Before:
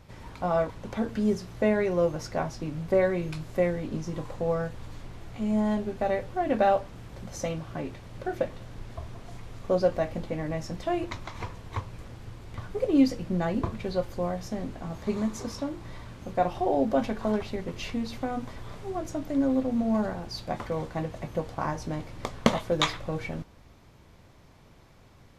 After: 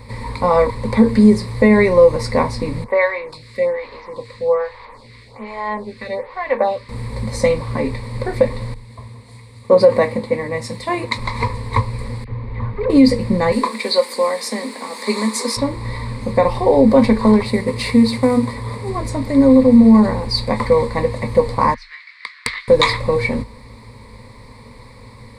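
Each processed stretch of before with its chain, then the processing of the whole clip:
2.84–6.89 three-band isolator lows -16 dB, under 530 Hz, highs -14 dB, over 5500 Hz + photocell phaser 1.2 Hz
8.74–11.18 HPF 140 Hz + bell 5000 Hz -3 dB 0.38 oct + three-band expander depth 70%
12.24–12.9 hard clip -32.5 dBFS + air absorption 420 m + dispersion lows, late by 41 ms, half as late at 1300 Hz
13.52–15.57 steep high-pass 220 Hz + tilt +3 dB/oct
17.45–18.89 CVSD 64 kbps + HPF 67 Hz + mismatched tape noise reduction decoder only
21.74–22.68 steep high-pass 1400 Hz 48 dB/oct + air absorption 230 m + Doppler distortion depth 0.28 ms
whole clip: ripple EQ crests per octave 0.95, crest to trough 16 dB; maximiser +13 dB; gain -1 dB

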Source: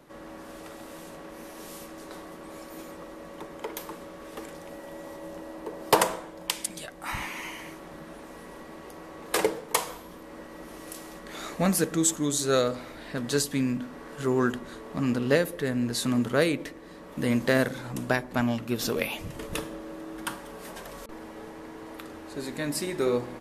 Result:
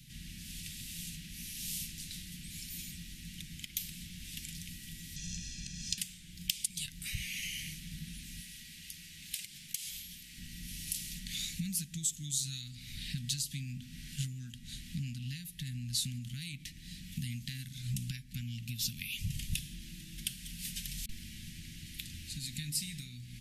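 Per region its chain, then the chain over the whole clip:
5.16–5.98 synth low-pass 6200 Hz, resonance Q 4.1 + comb 1.2 ms, depth 79% + compressor, threshold -30 dBFS
8.41–10.38 low shelf 370 Hz -11.5 dB + compressor 8:1, threshold -40 dBFS
whole clip: compressor 10:1, threshold -37 dBFS; inverse Chebyshev band-stop 450–1000 Hz, stop band 70 dB; bell 1300 Hz -2.5 dB 0.21 oct; gain +8.5 dB

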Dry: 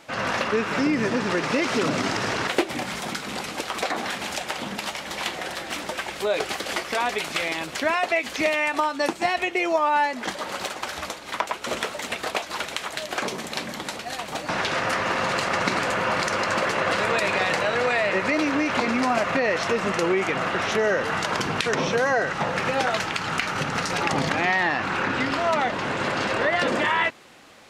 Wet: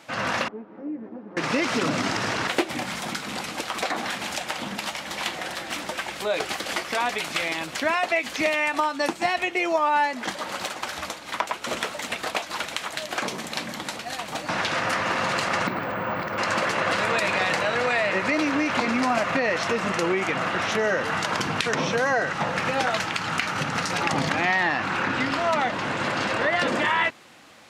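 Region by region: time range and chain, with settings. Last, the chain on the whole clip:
0.48–1.37 minimum comb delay 9.5 ms + ladder band-pass 340 Hz, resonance 35%
15.67–16.38 tape spacing loss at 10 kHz 34 dB + careless resampling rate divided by 2×, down filtered, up hold
whole clip: HPF 68 Hz; bell 500 Hz -2 dB; notch 400 Hz, Q 12

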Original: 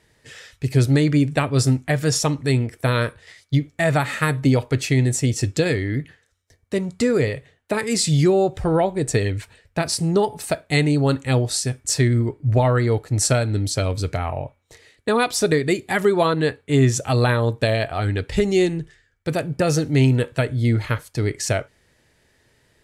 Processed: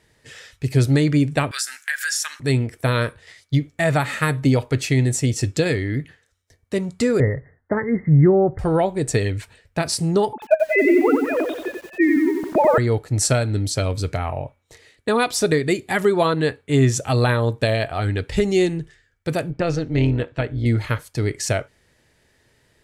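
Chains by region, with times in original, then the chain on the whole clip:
1.51–2.4 resonant high-pass 1600 Hz, resonance Q 9.2 + tilt +4.5 dB/oct + compressor 2.5:1, threshold -27 dBFS
7.2–8.59 Chebyshev low-pass 2100 Hz, order 10 + low shelf 160 Hz +9.5 dB
10.33–12.78 sine-wave speech + high shelf 2600 Hz -7 dB + lo-fi delay 91 ms, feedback 55%, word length 7-bit, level -4.5 dB
19.5–20.66 LPF 3900 Hz + AM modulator 170 Hz, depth 40%
whole clip: dry

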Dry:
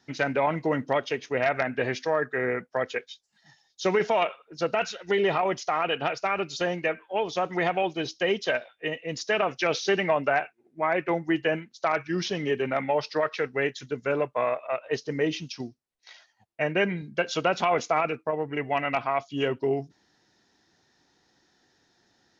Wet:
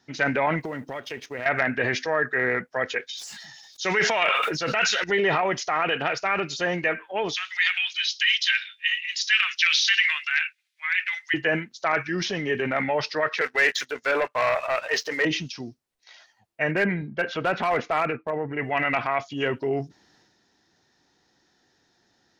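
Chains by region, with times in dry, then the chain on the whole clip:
0.6–1.46 G.711 law mismatch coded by A + compressor 5:1, threshold -29 dBFS
3.09–5.04 tilt shelf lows -6 dB, about 1300 Hz + sustainer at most 28 dB/s
7.34–11.34 Bessel high-pass 2400 Hz, order 6 + bell 3500 Hz +13.5 dB 1.8 oct
13.41–15.25 HPF 610 Hz + sample leveller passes 2
16.71–18.59 LPF 2200 Hz + hard clip -17 dBFS
whole clip: dynamic EQ 1800 Hz, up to +8 dB, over -44 dBFS, Q 1.7; transient shaper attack -2 dB, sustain +6 dB

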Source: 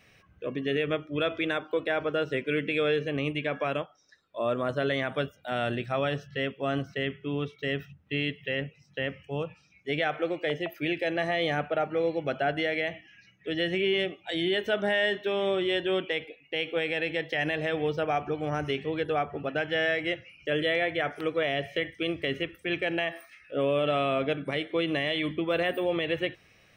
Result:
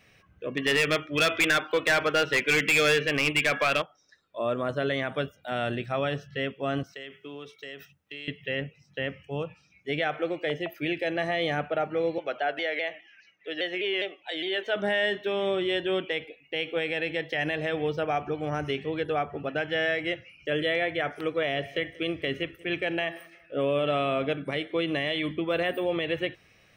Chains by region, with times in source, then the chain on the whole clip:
0.57–3.82 bell 2300 Hz +13.5 dB 2.7 oct + hard clip -18 dBFS
6.83–8.28 tone controls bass -14 dB, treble +10 dB + compressor, threshold -36 dBFS + three-band expander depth 40%
12.18–14.76 three-band isolator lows -23 dB, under 350 Hz, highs -14 dB, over 6700 Hz + shaped vibrato saw down 4.9 Hz, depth 100 cents
21.33–24.34 feedback echo 0.185 s, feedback 38%, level -22 dB + mismatched tape noise reduction decoder only
whole clip: dry

